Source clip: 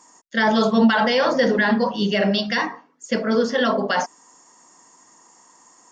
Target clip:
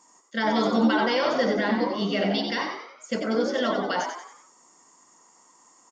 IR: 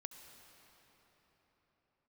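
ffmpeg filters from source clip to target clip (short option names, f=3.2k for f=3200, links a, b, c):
-filter_complex "[0:a]bandreject=f=1.7k:w=11,asplit=2[a][b];[b]asplit=5[c][d][e][f][g];[c]adelay=92,afreqshift=78,volume=-6dB[h];[d]adelay=184,afreqshift=156,volume=-12.9dB[i];[e]adelay=276,afreqshift=234,volume=-19.9dB[j];[f]adelay=368,afreqshift=312,volume=-26.8dB[k];[g]adelay=460,afreqshift=390,volume=-33.7dB[l];[h][i][j][k][l]amix=inputs=5:normalize=0[m];[a][m]amix=inputs=2:normalize=0,volume=-6dB"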